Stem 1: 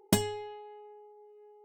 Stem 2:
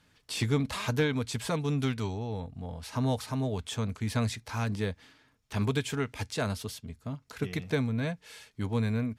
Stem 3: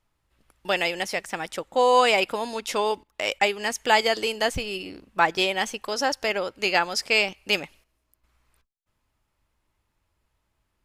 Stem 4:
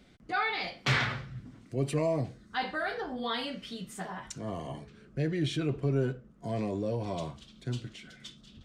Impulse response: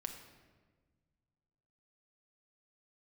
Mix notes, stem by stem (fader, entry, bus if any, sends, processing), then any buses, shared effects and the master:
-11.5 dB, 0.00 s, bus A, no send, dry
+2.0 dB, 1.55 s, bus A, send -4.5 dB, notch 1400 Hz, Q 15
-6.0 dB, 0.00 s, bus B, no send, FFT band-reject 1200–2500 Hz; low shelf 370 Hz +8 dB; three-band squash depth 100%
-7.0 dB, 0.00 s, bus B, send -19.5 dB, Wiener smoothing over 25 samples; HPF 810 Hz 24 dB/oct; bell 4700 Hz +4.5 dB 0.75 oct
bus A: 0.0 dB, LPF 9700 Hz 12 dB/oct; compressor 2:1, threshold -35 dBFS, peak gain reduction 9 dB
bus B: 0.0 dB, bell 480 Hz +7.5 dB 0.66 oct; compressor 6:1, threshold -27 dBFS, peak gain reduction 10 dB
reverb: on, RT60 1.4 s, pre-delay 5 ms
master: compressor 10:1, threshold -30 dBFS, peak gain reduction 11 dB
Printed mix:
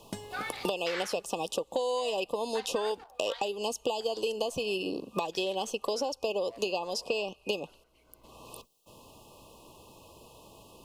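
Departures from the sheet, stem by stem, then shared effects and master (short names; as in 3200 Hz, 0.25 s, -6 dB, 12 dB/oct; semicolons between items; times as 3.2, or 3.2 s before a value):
stem 2: muted; stem 3: missing low shelf 370 Hz +8 dB; master: missing compressor 10:1, threshold -30 dBFS, peak gain reduction 11 dB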